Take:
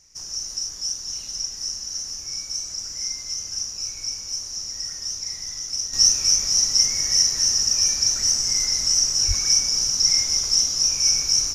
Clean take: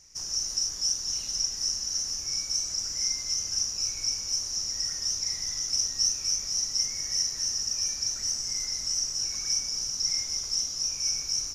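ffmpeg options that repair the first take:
-filter_complex "[0:a]asplit=3[a][b][c];[a]afade=t=out:st=9.27:d=0.02[d];[b]highpass=f=140:w=0.5412,highpass=f=140:w=1.3066,afade=t=in:st=9.27:d=0.02,afade=t=out:st=9.39:d=0.02[e];[c]afade=t=in:st=9.39:d=0.02[f];[d][e][f]amix=inputs=3:normalize=0,asetnsamples=n=441:p=0,asendcmd='5.93 volume volume -9.5dB',volume=0dB"

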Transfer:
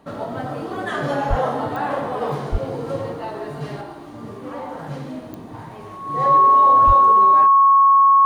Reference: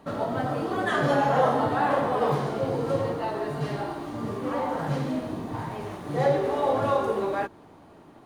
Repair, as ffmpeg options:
-filter_complex "[0:a]adeclick=t=4,bandreject=f=1.1k:w=30,asplit=3[a][b][c];[a]afade=t=out:st=1.29:d=0.02[d];[b]highpass=f=140:w=0.5412,highpass=f=140:w=1.3066,afade=t=in:st=1.29:d=0.02,afade=t=out:st=1.41:d=0.02[e];[c]afade=t=in:st=1.41:d=0.02[f];[d][e][f]amix=inputs=3:normalize=0,asplit=3[g][h][i];[g]afade=t=out:st=2.51:d=0.02[j];[h]highpass=f=140:w=0.5412,highpass=f=140:w=1.3066,afade=t=in:st=2.51:d=0.02,afade=t=out:st=2.63:d=0.02[k];[i]afade=t=in:st=2.63:d=0.02[l];[j][k][l]amix=inputs=3:normalize=0,asplit=3[m][n][o];[m]afade=t=out:st=6.86:d=0.02[p];[n]highpass=f=140:w=0.5412,highpass=f=140:w=1.3066,afade=t=in:st=6.86:d=0.02,afade=t=out:st=6.98:d=0.02[q];[o]afade=t=in:st=6.98:d=0.02[r];[p][q][r]amix=inputs=3:normalize=0,asetnsamples=n=441:p=0,asendcmd='3.81 volume volume 3dB',volume=0dB"

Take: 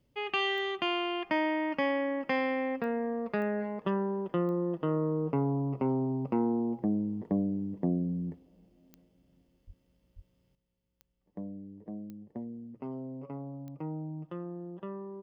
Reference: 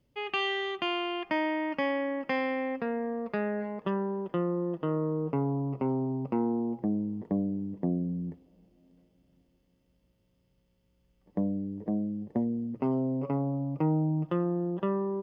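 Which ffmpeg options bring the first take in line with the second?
-filter_complex "[0:a]adeclick=t=4,asplit=3[a][b][c];[a]afade=t=out:st=9.66:d=0.02[d];[b]highpass=f=140:w=0.5412,highpass=f=140:w=1.3066,afade=t=in:st=9.66:d=0.02,afade=t=out:st=9.78:d=0.02[e];[c]afade=t=in:st=9.78:d=0.02[f];[d][e][f]amix=inputs=3:normalize=0,asplit=3[g][h][i];[g]afade=t=out:st=10.15:d=0.02[j];[h]highpass=f=140:w=0.5412,highpass=f=140:w=1.3066,afade=t=in:st=10.15:d=0.02,afade=t=out:st=10.27:d=0.02[k];[i]afade=t=in:st=10.27:d=0.02[l];[j][k][l]amix=inputs=3:normalize=0,asetnsamples=n=441:p=0,asendcmd='10.55 volume volume 11dB',volume=0dB"

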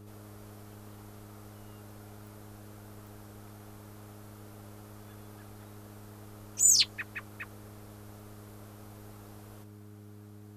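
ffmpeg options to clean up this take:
-af "adeclick=t=4,bandreject=f=103.9:t=h:w=4,bandreject=f=207.8:t=h:w=4,bandreject=f=311.7:t=h:w=4,bandreject=f=415.6:t=h:w=4"

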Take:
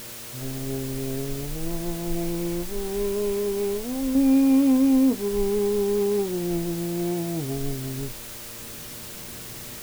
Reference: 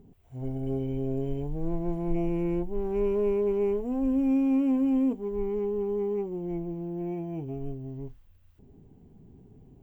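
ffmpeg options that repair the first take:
-af "bandreject=f=116.3:t=h:w=4,bandreject=f=232.6:t=h:w=4,bandreject=f=348.9:t=h:w=4,bandreject=f=465.2:t=h:w=4,bandreject=f=590:w=30,afwtdn=0.011,asetnsamples=n=441:p=0,asendcmd='4.15 volume volume -6dB',volume=0dB"

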